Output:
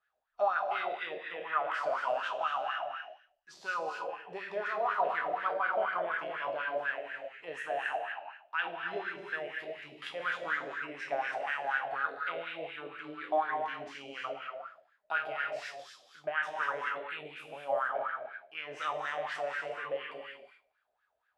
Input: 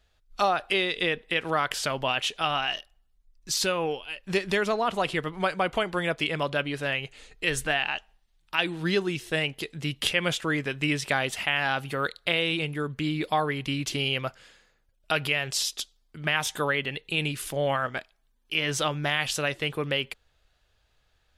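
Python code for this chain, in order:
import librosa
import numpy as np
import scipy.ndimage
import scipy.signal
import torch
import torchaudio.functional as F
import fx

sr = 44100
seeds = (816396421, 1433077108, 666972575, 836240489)

y = fx.spec_trails(x, sr, decay_s=0.52)
y = fx.rev_gated(y, sr, seeds[0], gate_ms=410, shape='flat', drr_db=1.0)
y = fx.filter_lfo_bandpass(y, sr, shape='sine', hz=4.1, low_hz=600.0, high_hz=1600.0, q=5.8)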